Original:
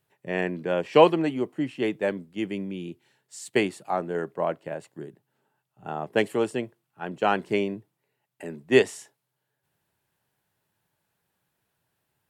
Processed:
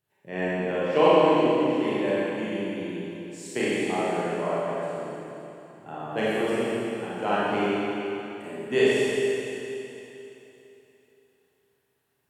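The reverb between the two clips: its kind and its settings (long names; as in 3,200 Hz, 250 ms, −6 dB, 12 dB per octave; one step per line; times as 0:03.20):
four-comb reverb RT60 3.2 s, combs from 29 ms, DRR −9.5 dB
level −8.5 dB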